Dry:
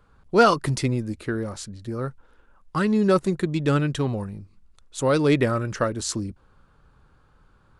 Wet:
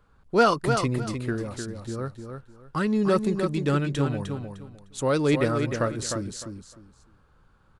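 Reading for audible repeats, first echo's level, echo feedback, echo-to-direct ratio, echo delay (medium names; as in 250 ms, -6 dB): 3, -6.5 dB, 23%, -6.5 dB, 304 ms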